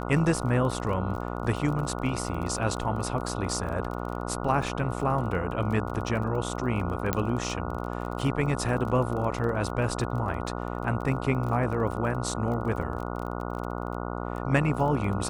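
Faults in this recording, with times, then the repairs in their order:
mains buzz 60 Hz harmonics 24 −33 dBFS
surface crackle 27 per second −34 dBFS
0:07.13: click −10 dBFS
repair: click removal
hum removal 60 Hz, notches 24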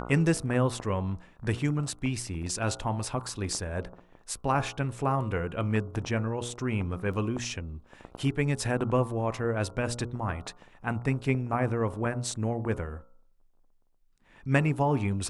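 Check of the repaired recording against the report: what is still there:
0:07.13: click

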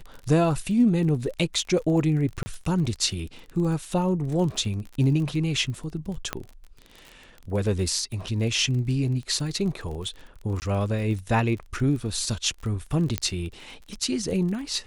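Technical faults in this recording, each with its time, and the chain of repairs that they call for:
surface crackle 29 per second −33 dBFS
0:02.43–0:02.46: drop-out 30 ms
0:06.33: click −12 dBFS
0:10.60–0:10.62: drop-out 19 ms
0:13.18: click −9 dBFS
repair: click removal
repair the gap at 0:02.43, 30 ms
repair the gap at 0:10.60, 19 ms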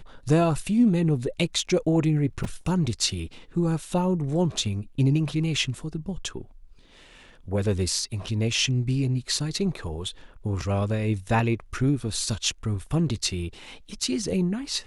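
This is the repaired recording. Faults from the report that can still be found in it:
none of them is left

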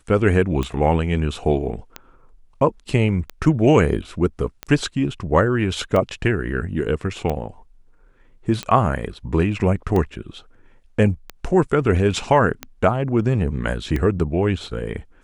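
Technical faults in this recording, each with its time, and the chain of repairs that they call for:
scratch tick 45 rpm −12 dBFS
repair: click removal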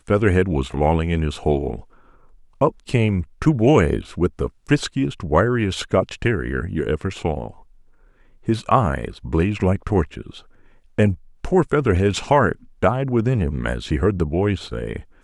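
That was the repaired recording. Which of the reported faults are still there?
none of them is left

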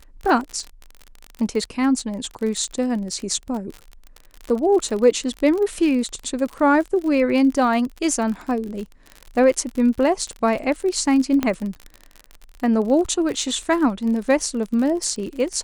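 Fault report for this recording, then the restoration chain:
surface crackle 44 per second −27 dBFS
0:11.43: click −8 dBFS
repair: click removal

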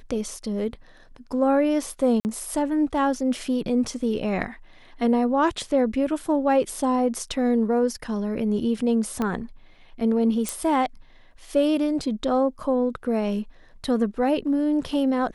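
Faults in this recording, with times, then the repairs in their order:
0:02.20–0:02.25: drop-out 49 ms
0:09.22: click −14 dBFS
0:10.49: click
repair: click removal
repair the gap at 0:02.20, 49 ms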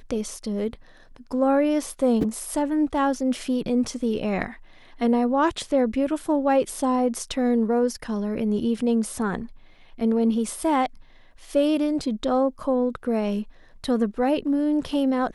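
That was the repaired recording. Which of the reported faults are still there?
0:09.22: click
0:10.49: click

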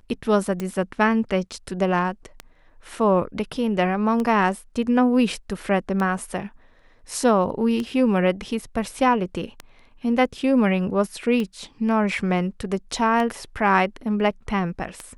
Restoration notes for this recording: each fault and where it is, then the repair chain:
scratch tick 33 1/3 rpm −15 dBFS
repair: click removal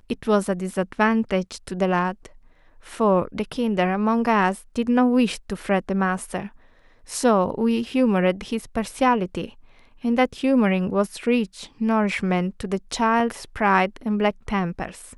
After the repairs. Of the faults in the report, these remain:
none of them is left

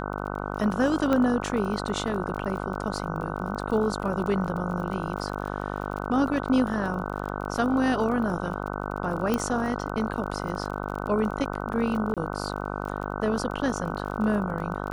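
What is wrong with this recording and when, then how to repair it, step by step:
mains buzz 50 Hz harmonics 30 −32 dBFS
surface crackle 33 per second −34 dBFS
0:01.13: click −13 dBFS
0:09.34: click −12 dBFS
0:12.14–0:12.17: drop-out 27 ms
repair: click removal
hum removal 50 Hz, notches 30
repair the gap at 0:12.14, 27 ms

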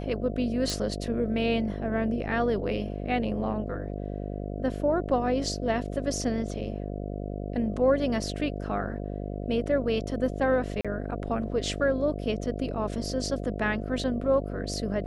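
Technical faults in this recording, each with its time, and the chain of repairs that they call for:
mains buzz 50 Hz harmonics 14 −34 dBFS
0:00.70: click
0:10.81–0:10.85: drop-out 36 ms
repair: click removal
hum removal 50 Hz, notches 14
repair the gap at 0:10.81, 36 ms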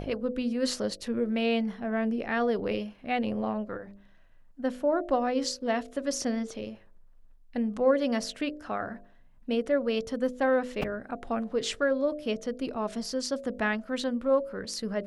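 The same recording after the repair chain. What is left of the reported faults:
none of them is left

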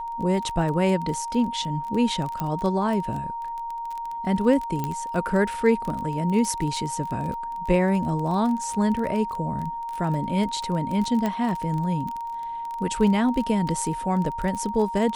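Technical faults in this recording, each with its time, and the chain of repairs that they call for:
surface crackle 21 per second −28 dBFS
whistle 930 Hz −29 dBFS
0:02.40: click −15 dBFS
0:04.84: click −14 dBFS
0:11.26: click −13 dBFS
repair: click removal
notch filter 930 Hz, Q 30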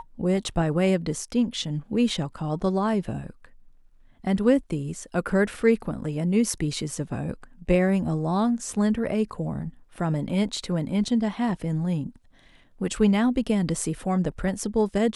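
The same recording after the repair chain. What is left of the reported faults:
0:02.40: click

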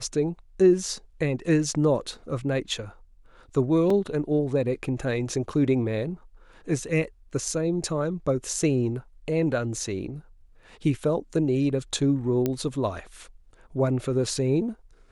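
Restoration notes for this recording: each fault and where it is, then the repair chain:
0:03.90: drop-out 3.6 ms
0:12.46: click −12 dBFS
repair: click removal
repair the gap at 0:03.90, 3.6 ms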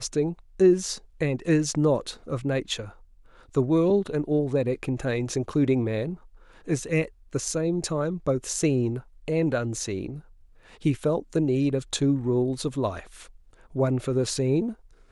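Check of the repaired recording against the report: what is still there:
none of them is left

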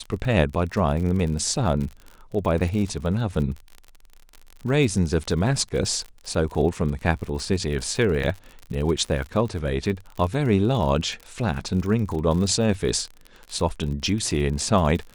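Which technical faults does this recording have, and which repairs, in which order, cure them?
surface crackle 52 per second −30 dBFS
0:08.23: drop-out 4.8 ms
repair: click removal
repair the gap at 0:08.23, 4.8 ms

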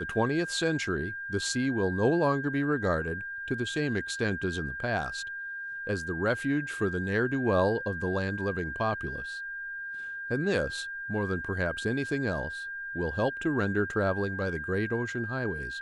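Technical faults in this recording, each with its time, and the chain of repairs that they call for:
whistle 1,600 Hz −35 dBFS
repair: notch filter 1,600 Hz, Q 30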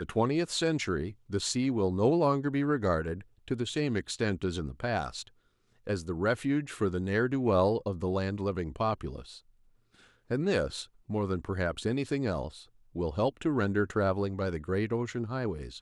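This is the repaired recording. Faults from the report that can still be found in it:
none of them is left

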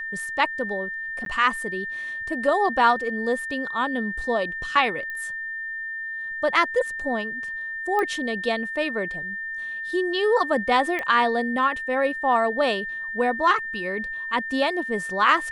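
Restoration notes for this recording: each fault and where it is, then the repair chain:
whistle 1,800 Hz −29 dBFS
0:01.25–0:01.26: drop-out 12 ms
0:05.10: click −22 dBFS
0:07.99: click −14 dBFS
0:10.99: click −16 dBFS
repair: click removal
notch filter 1,800 Hz, Q 30
repair the gap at 0:01.25, 12 ms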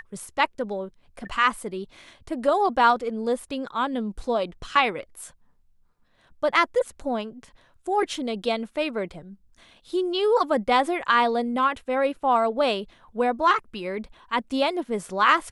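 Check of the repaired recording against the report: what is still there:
0:07.99: click

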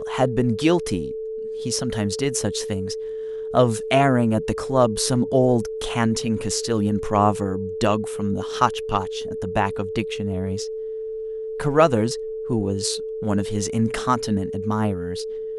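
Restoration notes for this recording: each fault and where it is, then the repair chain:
whistle 440 Hz −27 dBFS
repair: notch filter 440 Hz, Q 30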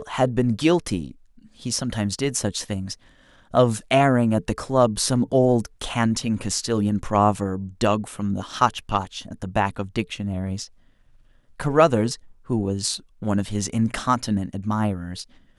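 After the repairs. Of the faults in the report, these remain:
none of them is left

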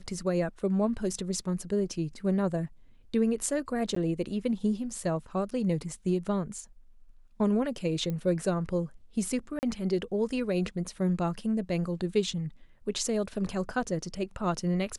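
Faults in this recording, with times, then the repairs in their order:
0:03.95–0:03.96: drop-out 14 ms
0:08.10: click −22 dBFS
0:09.59–0:09.63: drop-out 39 ms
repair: click removal
repair the gap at 0:03.95, 14 ms
repair the gap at 0:09.59, 39 ms

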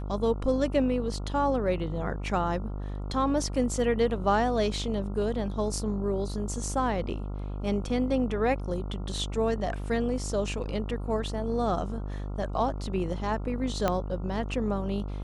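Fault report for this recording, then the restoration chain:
mains buzz 50 Hz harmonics 28 −34 dBFS
0:13.88: click −12 dBFS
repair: click removal
hum removal 50 Hz, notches 28

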